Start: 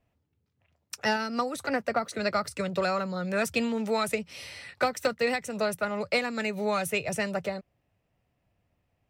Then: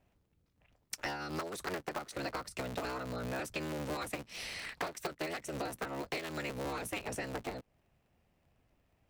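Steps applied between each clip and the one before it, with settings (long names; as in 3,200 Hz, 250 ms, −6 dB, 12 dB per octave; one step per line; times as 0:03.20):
sub-harmonics by changed cycles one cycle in 3, inverted
downward compressor 6 to 1, threshold −38 dBFS, peak gain reduction 16 dB
level +1.5 dB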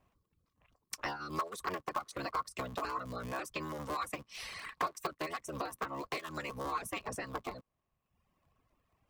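reverb reduction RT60 1 s
parametric band 1,100 Hz +15 dB 0.24 octaves
level −1 dB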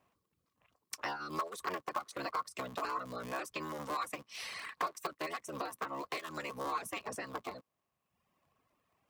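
harmonic and percussive parts rebalanced harmonic −7 dB
high-pass filter 270 Hz 6 dB per octave
harmonic and percussive parts rebalanced percussive −9 dB
level +8 dB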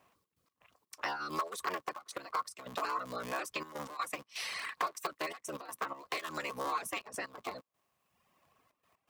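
low-shelf EQ 360 Hz −6.5 dB
in parallel at +2.5 dB: downward compressor, threshold −47 dBFS, peak gain reduction 15.5 dB
on the sum: gate pattern "xx.x.xx.xxxxxx" 124 BPM −12 dB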